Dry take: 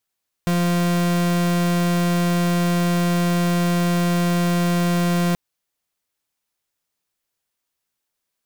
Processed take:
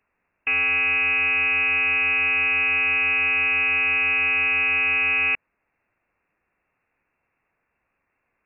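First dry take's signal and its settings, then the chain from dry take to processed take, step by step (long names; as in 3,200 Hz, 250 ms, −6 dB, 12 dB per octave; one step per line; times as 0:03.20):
pulse wave 174 Hz, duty 41% −19 dBFS 4.88 s
in parallel at −11 dB: sine wavefolder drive 18 dB, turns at −18.5 dBFS
on the sum: voice inversion scrambler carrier 2,700 Hz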